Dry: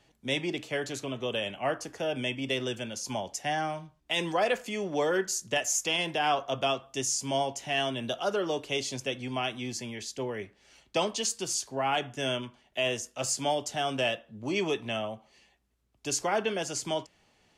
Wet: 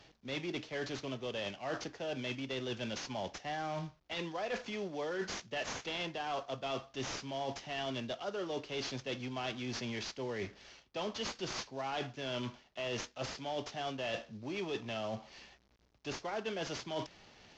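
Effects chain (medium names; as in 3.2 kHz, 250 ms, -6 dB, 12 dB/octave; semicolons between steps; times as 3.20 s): CVSD coder 32 kbps; reverse; compression 6:1, threshold -43 dBFS, peak gain reduction 18.5 dB; reverse; trim +6 dB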